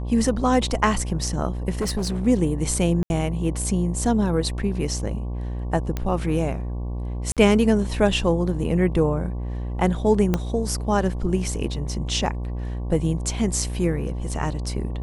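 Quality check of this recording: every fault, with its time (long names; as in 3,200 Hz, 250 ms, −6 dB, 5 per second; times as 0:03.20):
mains buzz 60 Hz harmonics 19 −28 dBFS
0:01.81–0:02.27: clipping −21 dBFS
0:03.03–0:03.10: drop-out 71 ms
0:05.97: click −13 dBFS
0:07.32–0:07.37: drop-out 47 ms
0:10.34: click −8 dBFS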